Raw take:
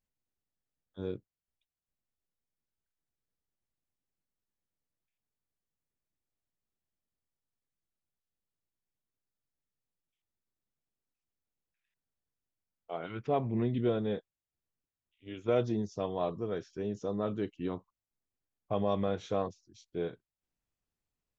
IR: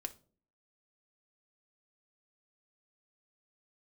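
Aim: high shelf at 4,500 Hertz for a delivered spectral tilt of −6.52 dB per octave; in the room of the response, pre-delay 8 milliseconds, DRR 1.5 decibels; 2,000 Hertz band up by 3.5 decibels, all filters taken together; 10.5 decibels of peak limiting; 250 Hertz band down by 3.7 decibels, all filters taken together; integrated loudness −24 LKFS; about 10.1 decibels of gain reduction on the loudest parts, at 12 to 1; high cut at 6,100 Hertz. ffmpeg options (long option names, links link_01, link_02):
-filter_complex "[0:a]lowpass=6100,equalizer=frequency=250:width_type=o:gain=-5,equalizer=frequency=2000:width_type=o:gain=6.5,highshelf=frequency=4500:gain=-8,acompressor=threshold=-35dB:ratio=12,alimiter=level_in=11dB:limit=-24dB:level=0:latency=1,volume=-11dB,asplit=2[link_01][link_02];[1:a]atrim=start_sample=2205,adelay=8[link_03];[link_02][link_03]afir=irnorm=-1:irlink=0,volume=0.5dB[link_04];[link_01][link_04]amix=inputs=2:normalize=0,volume=20dB"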